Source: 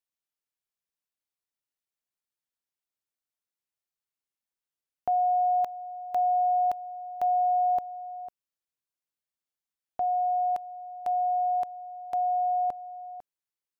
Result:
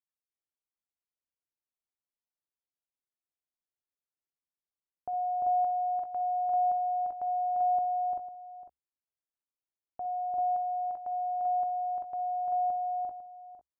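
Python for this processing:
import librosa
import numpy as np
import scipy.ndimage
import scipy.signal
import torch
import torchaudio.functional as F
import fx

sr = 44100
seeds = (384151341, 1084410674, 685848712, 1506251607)

p1 = scipy.signal.sosfilt(scipy.signal.butter(2, 1100.0, 'lowpass', fs=sr, output='sos'), x)
p2 = fx.peak_eq(p1, sr, hz=68.0, db=4.5, octaves=0.25)
p3 = p2 + fx.echo_multitap(p2, sr, ms=(54, 62, 347, 388, 391, 408), db=(-15.5, -14.0, -3.0, -7.5, -4.0, -10.5), dry=0)
y = p3 * 10.0 ** (-8.5 / 20.0)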